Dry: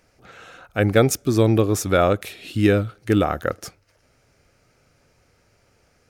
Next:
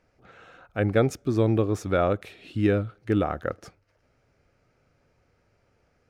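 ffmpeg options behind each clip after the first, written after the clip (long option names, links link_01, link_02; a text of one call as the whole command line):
ffmpeg -i in.wav -af "aemphasis=mode=reproduction:type=75kf,volume=-5dB" out.wav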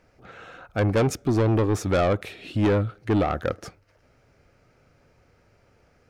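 ffmpeg -i in.wav -af "asoftclip=type=tanh:threshold=-23dB,volume=6.5dB" out.wav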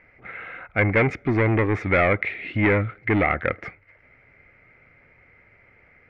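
ffmpeg -i in.wav -af "lowpass=frequency=2100:width_type=q:width=12" out.wav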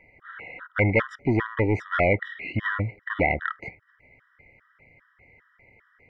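ffmpeg -i in.wav -af "afftfilt=real='re*gt(sin(2*PI*2.5*pts/sr)*(1-2*mod(floor(b*sr/1024/980),2)),0)':imag='im*gt(sin(2*PI*2.5*pts/sr)*(1-2*mod(floor(b*sr/1024/980),2)),0)':win_size=1024:overlap=0.75" out.wav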